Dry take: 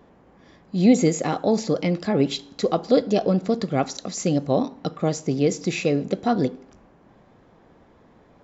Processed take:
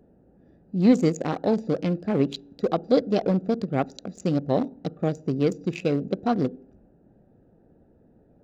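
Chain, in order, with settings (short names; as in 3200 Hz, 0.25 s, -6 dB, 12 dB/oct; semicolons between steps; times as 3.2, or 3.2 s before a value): Wiener smoothing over 41 samples; gain -1.5 dB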